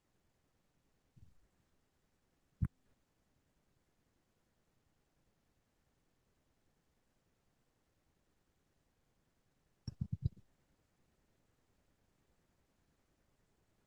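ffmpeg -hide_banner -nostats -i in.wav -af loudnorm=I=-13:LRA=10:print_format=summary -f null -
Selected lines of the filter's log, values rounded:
Input Integrated:    -44.4 LUFS
Input True Peak:     -22.9 dBTP
Input LRA:             1.6 LU
Input Threshold:     -55.6 LUFS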